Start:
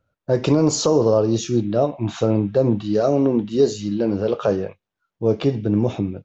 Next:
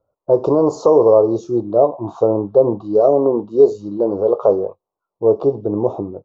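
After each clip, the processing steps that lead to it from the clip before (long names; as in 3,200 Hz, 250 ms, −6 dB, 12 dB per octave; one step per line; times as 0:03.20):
drawn EQ curve 240 Hz 0 dB, 400 Hz +13 dB, 1,100 Hz +13 dB, 1,900 Hz −27 dB, 4,200 Hz −9 dB
level −6.5 dB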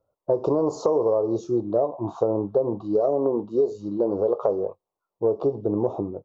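downward compressor, threshold −15 dBFS, peak gain reduction 9.5 dB
level −3 dB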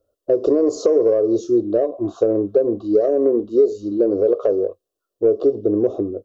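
Butterworth band-reject 2,200 Hz, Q 2.9
in parallel at −11 dB: soft clipping −17.5 dBFS, distortion −15 dB
on the sum: phaser with its sweep stopped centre 370 Hz, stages 4
level +5.5 dB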